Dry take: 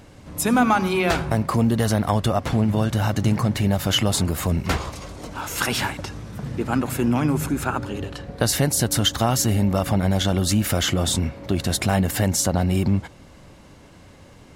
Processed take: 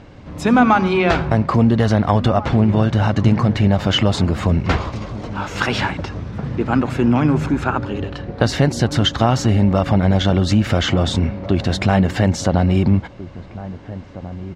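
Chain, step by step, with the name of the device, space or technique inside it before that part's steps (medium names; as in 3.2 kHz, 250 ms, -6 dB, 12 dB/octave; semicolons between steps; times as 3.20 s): shout across a valley (distance through air 160 m; echo from a far wall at 290 m, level -15 dB); trim +5.5 dB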